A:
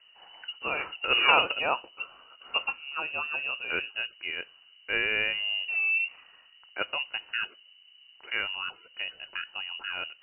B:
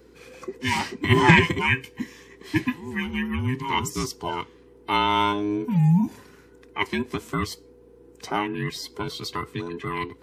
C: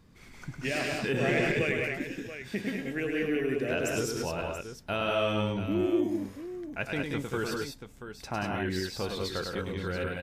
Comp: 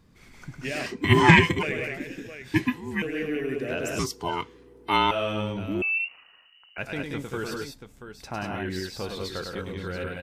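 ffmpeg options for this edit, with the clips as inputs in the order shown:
-filter_complex "[1:a]asplit=3[a][b][c];[2:a]asplit=5[d][e][f][g][h];[d]atrim=end=0.862[i];[a]atrim=start=0.858:end=1.632[j];[e]atrim=start=1.628:end=2.542[k];[b]atrim=start=2.538:end=3.022[l];[f]atrim=start=3.018:end=3.992[m];[c]atrim=start=3.988:end=5.112[n];[g]atrim=start=5.108:end=5.822[o];[0:a]atrim=start=5.818:end=6.782[p];[h]atrim=start=6.778[q];[i][j]acrossfade=d=0.004:c1=hsin:c2=hsin[r];[r][k]acrossfade=d=0.004:c1=hsin:c2=hsin[s];[s][l]acrossfade=d=0.004:c1=hsin:c2=hsin[t];[t][m]acrossfade=d=0.004:c1=hsin:c2=hsin[u];[u][n]acrossfade=d=0.004:c1=hsin:c2=hsin[v];[v][o]acrossfade=d=0.004:c1=hsin:c2=hsin[w];[w][p]acrossfade=d=0.004:c1=hsin:c2=hsin[x];[x][q]acrossfade=d=0.004:c1=hsin:c2=hsin"

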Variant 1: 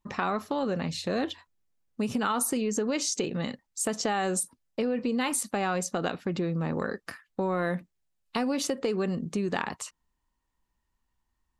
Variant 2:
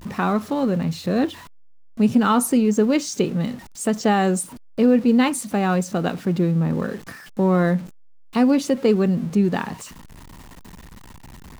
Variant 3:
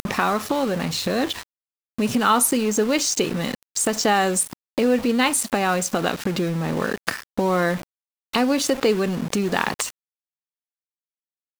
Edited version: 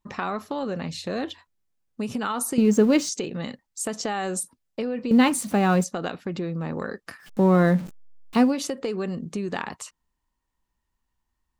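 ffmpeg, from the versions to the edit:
-filter_complex "[1:a]asplit=3[a][b][c];[0:a]asplit=4[d][e][f][g];[d]atrim=end=2.582[h];[a]atrim=start=2.578:end=3.092[i];[e]atrim=start=3.088:end=5.112[j];[b]atrim=start=5.108:end=5.842[k];[f]atrim=start=5.838:end=7.34[l];[c]atrim=start=7.18:end=8.56[m];[g]atrim=start=8.4[n];[h][i]acrossfade=d=0.004:c1=hsin:c2=hsin[o];[o][j]acrossfade=d=0.004:c1=hsin:c2=hsin[p];[p][k]acrossfade=d=0.004:c1=hsin:c2=hsin[q];[q][l]acrossfade=d=0.004:c1=hsin:c2=hsin[r];[r][m]acrossfade=d=0.16:c1=tri:c2=tri[s];[s][n]acrossfade=d=0.16:c1=tri:c2=tri"

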